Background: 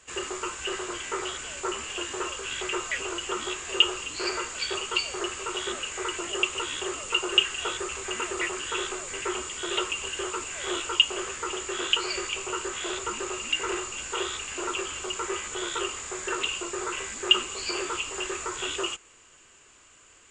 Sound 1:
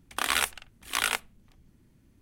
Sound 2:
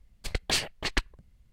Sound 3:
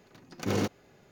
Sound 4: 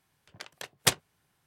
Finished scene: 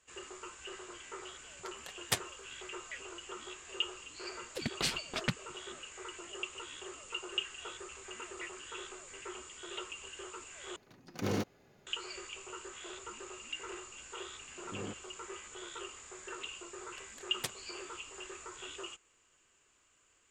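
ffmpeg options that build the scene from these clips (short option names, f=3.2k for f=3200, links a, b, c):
-filter_complex "[4:a]asplit=2[a][b];[3:a]asplit=2[c][d];[0:a]volume=-14.5dB[e];[a]flanger=delay=5:depth=6.6:regen=36:speed=1.5:shape=triangular[f];[2:a]aeval=exprs='val(0)*sin(2*PI*410*n/s+410*0.65/4.5*sin(2*PI*4.5*n/s))':c=same[g];[d]lowpass=2.4k[h];[e]asplit=2[i][j];[i]atrim=end=10.764[k];[c]atrim=end=1.11,asetpts=PTS-STARTPTS,volume=-5dB[l];[j]atrim=start=11.866[m];[f]atrim=end=1.46,asetpts=PTS-STARTPTS,volume=-4.5dB,afade=t=in:d=0.004:c=hsin,afade=t=out:st=1.456:d=0.004:c=hsin,adelay=1250[n];[g]atrim=end=1.52,asetpts=PTS-STARTPTS,volume=-4dB,afade=t=in:d=0.004:c=hsin,afade=t=out:st=1.516:d=0.004:c=hsin,adelay=4310[o];[h]atrim=end=1.11,asetpts=PTS-STARTPTS,volume=-14.5dB,afade=t=in:d=0.004:c=hsin,afade=t=out:st=1.106:d=0.004:c=hsin,adelay=14260[p];[b]atrim=end=1.46,asetpts=PTS-STARTPTS,volume=-15.5dB,afade=t=in:d=0.004:c=hsin,afade=t=out:st=1.456:d=0.004:c=hsin,adelay=16570[q];[k][l]acrossfade=d=0.004:c1=hsin:c2=hsin[r];[r][m]acrossfade=d=0.004:c1=hsin:c2=hsin[s];[s][n][o][p][q]amix=inputs=5:normalize=0"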